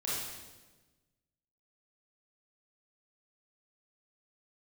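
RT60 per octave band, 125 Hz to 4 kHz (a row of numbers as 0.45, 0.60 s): 1.7, 1.6, 1.4, 1.1, 1.1, 1.1 s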